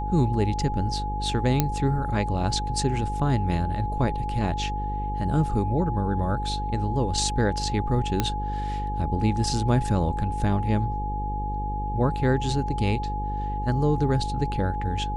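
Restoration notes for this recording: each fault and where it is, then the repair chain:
mains buzz 50 Hz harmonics 10 −30 dBFS
whistle 840 Hz −30 dBFS
0:01.60: click −6 dBFS
0:08.20: click −8 dBFS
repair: click removal
notch filter 840 Hz, Q 30
hum removal 50 Hz, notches 10

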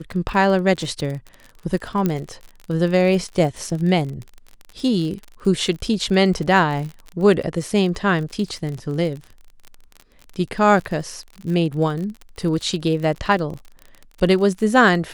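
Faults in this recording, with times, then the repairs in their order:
surface crackle 43 per second −28 dBFS
0:02.06: click −8 dBFS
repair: click removal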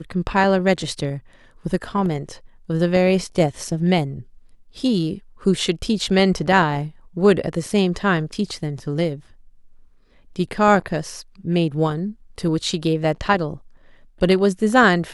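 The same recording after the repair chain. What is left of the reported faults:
0:02.06: click

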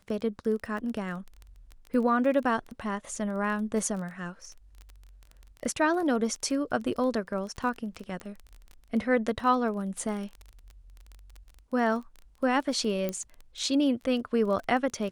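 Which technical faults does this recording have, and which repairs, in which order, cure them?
surface crackle 21 per second −35 dBFS
0:08.20: click −25 dBFS
0:13.09: click −17 dBFS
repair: click removal

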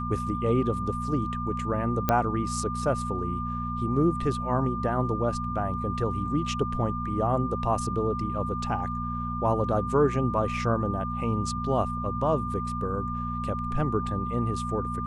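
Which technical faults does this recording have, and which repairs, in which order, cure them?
mains hum 60 Hz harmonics 4 −33 dBFS
whistle 1,200 Hz −32 dBFS
0:02.09: click −9 dBFS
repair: click removal
hum removal 60 Hz, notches 4
notch filter 1,200 Hz, Q 30

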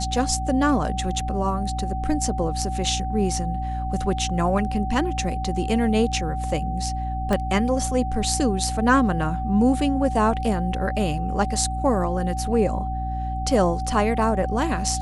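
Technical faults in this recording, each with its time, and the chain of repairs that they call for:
mains hum 60 Hz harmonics 5 −28 dBFS
whistle 760 Hz −29 dBFS
0:07.33: click −11 dBFS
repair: click removal
notch filter 760 Hz, Q 30
hum removal 60 Hz, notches 5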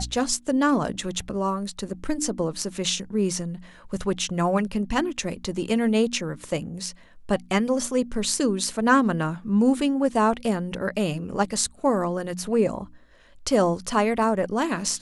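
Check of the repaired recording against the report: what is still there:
0:07.33: click

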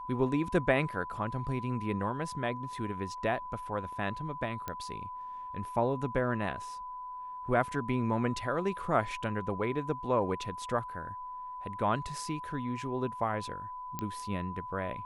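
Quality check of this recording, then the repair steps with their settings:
whistle 1,000 Hz −39 dBFS
0:04.68: click −21 dBFS
0:13.99: click −19 dBFS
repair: click removal
notch filter 1,000 Hz, Q 30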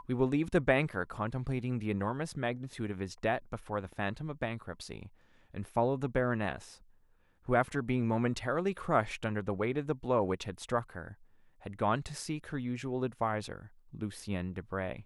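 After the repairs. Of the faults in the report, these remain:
0:04.68: click

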